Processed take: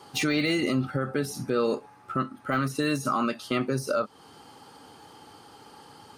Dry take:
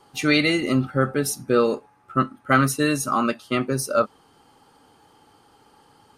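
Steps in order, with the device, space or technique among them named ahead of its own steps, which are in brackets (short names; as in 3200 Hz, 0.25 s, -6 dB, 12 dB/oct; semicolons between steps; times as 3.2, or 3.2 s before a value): broadcast voice chain (HPF 72 Hz; de-esser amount 70%; compressor 4:1, threshold -27 dBFS, peak gain reduction 11.5 dB; bell 4700 Hz +3.5 dB 0.85 oct; limiter -21.5 dBFS, peak gain reduction 8 dB); gain +5.5 dB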